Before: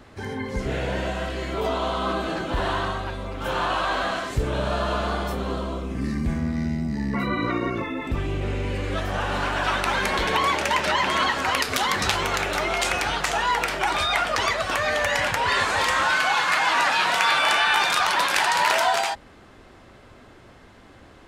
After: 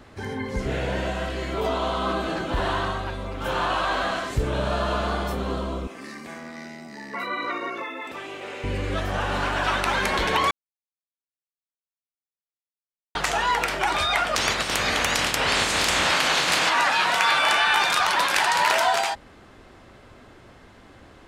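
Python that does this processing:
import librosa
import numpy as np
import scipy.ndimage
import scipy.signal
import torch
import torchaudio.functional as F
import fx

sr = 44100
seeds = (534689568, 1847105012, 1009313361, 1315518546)

y = fx.highpass(x, sr, hz=540.0, slope=12, at=(5.87, 8.64))
y = fx.spec_clip(y, sr, under_db=19, at=(14.34, 16.68), fade=0.02)
y = fx.edit(y, sr, fx.silence(start_s=10.51, length_s=2.64), tone=tone)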